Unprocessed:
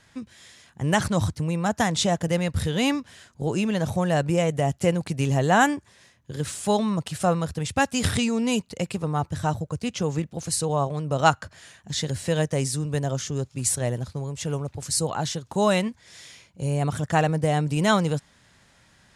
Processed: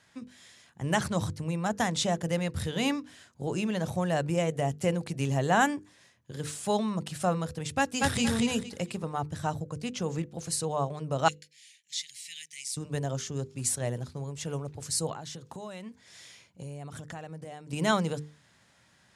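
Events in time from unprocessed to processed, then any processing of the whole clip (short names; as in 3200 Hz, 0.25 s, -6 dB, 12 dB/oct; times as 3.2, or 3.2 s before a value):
7.78–8.23 echo throw 0.23 s, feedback 25%, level -1.5 dB
11.28–12.77 elliptic high-pass 2100 Hz
15.12–17.73 compressor 16:1, threshold -31 dBFS
whole clip: HPF 82 Hz; notches 50/100/150/200/250/300/350/400/450/500 Hz; gain -5 dB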